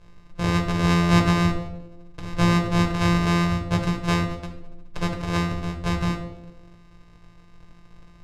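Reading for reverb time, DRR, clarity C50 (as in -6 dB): 0.95 s, 1.0 dB, 7.5 dB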